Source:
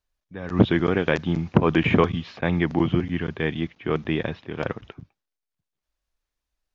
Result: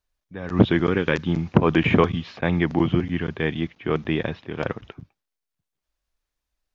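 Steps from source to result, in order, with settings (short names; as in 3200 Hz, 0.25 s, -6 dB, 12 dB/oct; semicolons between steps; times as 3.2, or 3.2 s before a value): 0.87–1.29 bell 690 Hz -12 dB 0.35 oct; gain +1 dB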